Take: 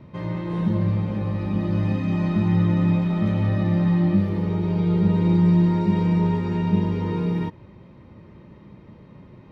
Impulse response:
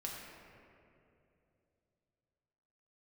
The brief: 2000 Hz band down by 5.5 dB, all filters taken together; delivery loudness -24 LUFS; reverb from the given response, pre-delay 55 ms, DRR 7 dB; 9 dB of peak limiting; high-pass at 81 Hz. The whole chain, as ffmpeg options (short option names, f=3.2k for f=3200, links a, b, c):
-filter_complex "[0:a]highpass=81,equalizer=f=2k:t=o:g=-6.5,alimiter=limit=-19dB:level=0:latency=1,asplit=2[a][b];[1:a]atrim=start_sample=2205,adelay=55[c];[b][c]afir=irnorm=-1:irlink=0,volume=-7dB[d];[a][d]amix=inputs=2:normalize=0,volume=1dB"